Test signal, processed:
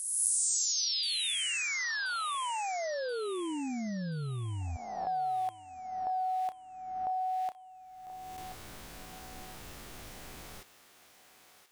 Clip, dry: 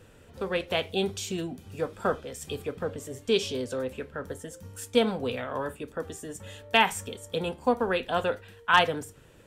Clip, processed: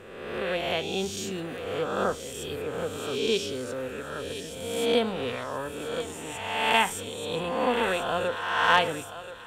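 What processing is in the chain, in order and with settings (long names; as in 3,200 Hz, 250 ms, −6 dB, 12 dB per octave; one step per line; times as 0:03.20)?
peak hold with a rise ahead of every peak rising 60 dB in 1.31 s
feedback echo with a high-pass in the loop 1,030 ms, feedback 44%, high-pass 640 Hz, level −10 dB
level −3.5 dB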